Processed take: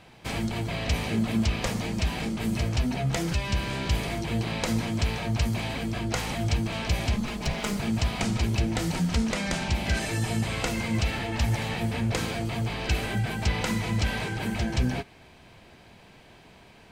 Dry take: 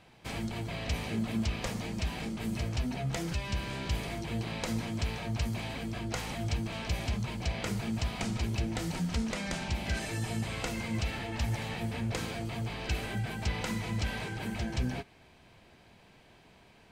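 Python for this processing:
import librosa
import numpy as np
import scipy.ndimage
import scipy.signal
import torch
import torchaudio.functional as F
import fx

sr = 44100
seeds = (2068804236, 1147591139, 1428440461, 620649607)

y = fx.lower_of_two(x, sr, delay_ms=4.8, at=(7.16, 7.8))
y = y * librosa.db_to_amplitude(6.5)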